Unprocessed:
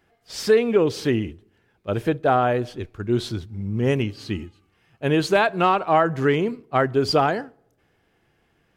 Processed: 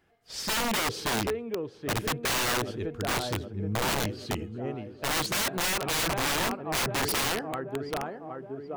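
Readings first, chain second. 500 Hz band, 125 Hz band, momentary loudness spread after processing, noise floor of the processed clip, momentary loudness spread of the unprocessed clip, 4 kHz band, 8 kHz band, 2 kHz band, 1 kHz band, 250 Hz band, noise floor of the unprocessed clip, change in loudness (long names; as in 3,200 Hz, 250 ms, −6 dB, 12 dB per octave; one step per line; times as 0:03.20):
−11.5 dB, −8.0 dB, 9 LU, −49 dBFS, 13 LU, +2.5 dB, +10.0 dB, −2.0 dB, −8.0 dB, −9.5 dB, −66 dBFS, −7.0 dB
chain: tape delay 775 ms, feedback 66%, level −9 dB, low-pass 1,300 Hz
wrap-around overflow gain 18.5 dB
level −4 dB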